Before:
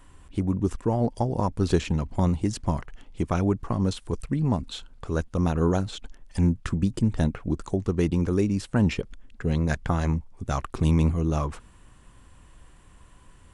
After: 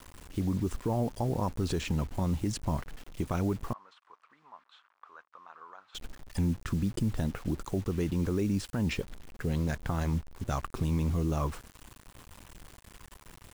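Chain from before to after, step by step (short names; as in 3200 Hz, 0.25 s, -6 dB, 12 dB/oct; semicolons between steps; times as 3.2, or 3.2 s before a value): limiter -19 dBFS, peak gain reduction 10 dB; bit-crush 8-bit; 3.73–5.95 ladder band-pass 1300 Hz, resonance 55%; gain -2 dB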